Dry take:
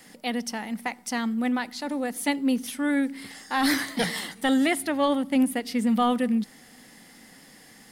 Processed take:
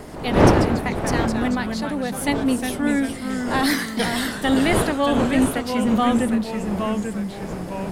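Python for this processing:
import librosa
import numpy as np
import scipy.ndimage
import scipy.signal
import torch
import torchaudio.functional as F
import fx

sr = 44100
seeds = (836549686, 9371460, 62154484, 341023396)

y = fx.dmg_wind(x, sr, seeds[0], corner_hz=570.0, level_db=-29.0)
y = fx.echo_pitch(y, sr, ms=81, semitones=-2, count=3, db_per_echo=-6.0)
y = y * 10.0 ** (2.5 / 20.0)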